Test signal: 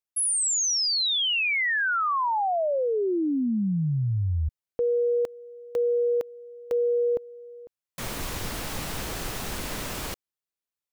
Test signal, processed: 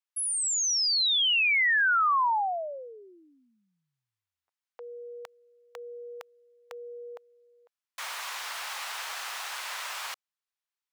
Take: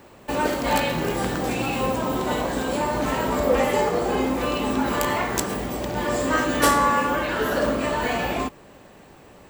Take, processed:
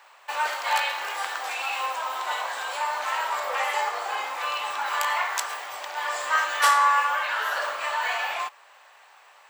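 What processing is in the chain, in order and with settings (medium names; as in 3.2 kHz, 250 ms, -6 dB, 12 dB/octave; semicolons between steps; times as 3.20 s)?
high-pass 860 Hz 24 dB/octave; treble shelf 7.6 kHz -10.5 dB; trim +2 dB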